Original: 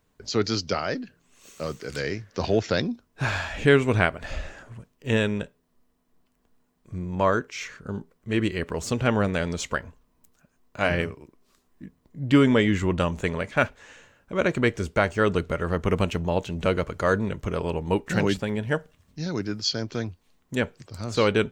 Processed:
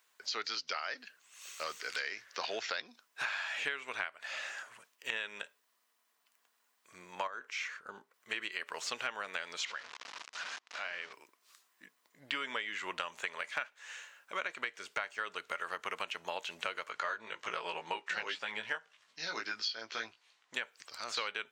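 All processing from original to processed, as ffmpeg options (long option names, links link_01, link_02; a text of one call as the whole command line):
ffmpeg -i in.wav -filter_complex "[0:a]asettb=1/sr,asplit=3[link_01][link_02][link_03];[link_01]atrim=end=7.274[link_04];[link_02]atrim=start=7.27:end=8.14,asetpts=PTS-STARTPTS,afade=type=in:duration=0.004:curve=qsin,afade=type=out:start_time=0.866:duration=0.004:curve=qsin,highshelf=frequency=2300:gain=-9.5,acompressor=threshold=-26dB:ratio=6:attack=3.2:release=140:knee=1:detection=peak[link_05];[link_03]atrim=start=8.136[link_06];[link_04][link_05]acrossfade=duration=0.004:curve1=hsin:curve2=qsin[link_07];[link_07][link_06]acrossfade=duration=0.004:curve1=qsin:curve2=hsin,asettb=1/sr,asplit=3[link_08][link_09][link_10];[link_08]atrim=end=9.654[link_11];[link_09]atrim=start=9.65:end=11.13,asetpts=PTS-STARTPTS,afade=type=in:duration=0.004:curve=qsin,afade=type=out:start_time=1.476:duration=0.004:curve=qsin,aeval=exprs='val(0)+0.5*0.02*sgn(val(0))':channel_layout=same,lowpass=frequency=5900:width=0.5412,lowpass=frequency=5900:width=1.3066,acompressor=threshold=-39dB:ratio=3:attack=3.2:release=140:knee=1:detection=peak[link_12];[link_10]atrim=start=11.126[link_13];[link_11][link_12]acrossfade=duration=0.004:curve1=hsin:curve2=qsin[link_14];[link_14][link_13]acrossfade=duration=0.004:curve1=qsin:curve2=hsin,asettb=1/sr,asplit=3[link_15][link_16][link_17];[link_15]atrim=end=16.894[link_18];[link_16]atrim=start=16.89:end=20.55,asetpts=PTS-STARTPTS,afade=type=in:duration=0.004:curve=qsin,afade=type=out:start_time=3.656:duration=0.004:curve=qsin,lowpass=5500,asplit=2[link_19][link_20];[link_20]adelay=18,volume=-3.5dB[link_21];[link_19][link_21]amix=inputs=2:normalize=0,atrim=end_sample=161406[link_22];[link_17]atrim=start=20.546[link_23];[link_18][link_22]acrossfade=duration=0.004:curve1=hsin:curve2=qsin[link_24];[link_24][link_23]acrossfade=duration=0.004:curve1=qsin:curve2=hsin,acrossover=split=4800[link_25][link_26];[link_26]acompressor=threshold=-53dB:ratio=4:attack=1:release=60[link_27];[link_25][link_27]amix=inputs=2:normalize=0,highpass=1300,acompressor=threshold=-38dB:ratio=10,volume=4.5dB" out.wav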